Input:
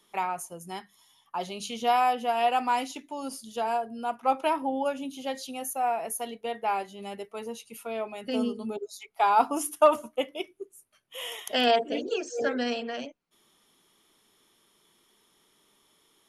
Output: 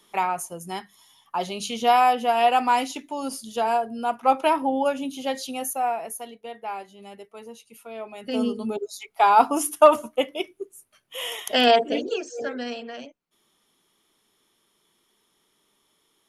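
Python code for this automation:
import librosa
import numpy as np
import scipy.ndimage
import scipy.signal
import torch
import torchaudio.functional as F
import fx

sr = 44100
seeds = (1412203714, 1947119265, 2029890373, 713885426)

y = fx.gain(x, sr, db=fx.line((5.63, 5.5), (6.36, -4.5), (7.9, -4.5), (8.54, 5.5), (11.93, 5.5), (12.44, -2.5)))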